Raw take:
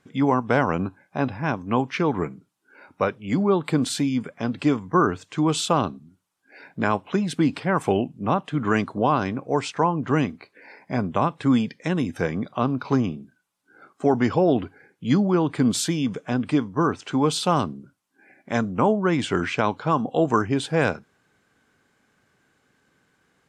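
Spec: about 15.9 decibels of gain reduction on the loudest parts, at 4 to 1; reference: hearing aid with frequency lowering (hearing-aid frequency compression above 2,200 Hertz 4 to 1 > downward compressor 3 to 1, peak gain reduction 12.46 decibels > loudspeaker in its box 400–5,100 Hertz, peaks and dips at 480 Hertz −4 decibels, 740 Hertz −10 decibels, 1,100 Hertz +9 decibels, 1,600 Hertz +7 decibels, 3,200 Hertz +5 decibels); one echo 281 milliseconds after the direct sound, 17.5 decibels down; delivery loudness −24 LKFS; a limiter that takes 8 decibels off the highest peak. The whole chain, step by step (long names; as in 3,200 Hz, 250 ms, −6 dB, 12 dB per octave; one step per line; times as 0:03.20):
downward compressor 4 to 1, threshold −35 dBFS
brickwall limiter −26.5 dBFS
single-tap delay 281 ms −17.5 dB
hearing-aid frequency compression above 2,200 Hz 4 to 1
downward compressor 3 to 1, threshold −46 dBFS
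loudspeaker in its box 400–5,100 Hz, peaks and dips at 480 Hz −4 dB, 740 Hz −10 dB, 1,100 Hz +9 dB, 1,600 Hz +7 dB, 3,200 Hz +5 dB
level +24 dB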